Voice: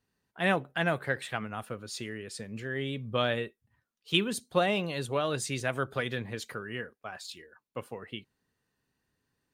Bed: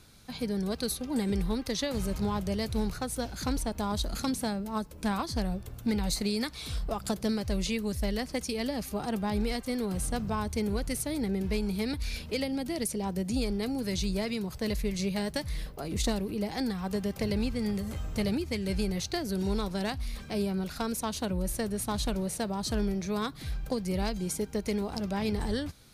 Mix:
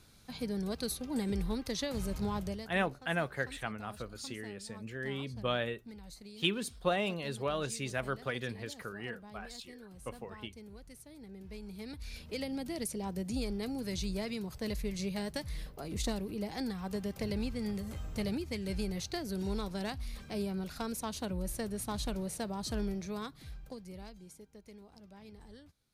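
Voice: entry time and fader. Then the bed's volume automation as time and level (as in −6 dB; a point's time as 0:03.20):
2.30 s, −4.5 dB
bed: 0:02.46 −4.5 dB
0:02.78 −20.5 dB
0:11.17 −20.5 dB
0:12.51 −5.5 dB
0:22.92 −5.5 dB
0:24.49 −22.5 dB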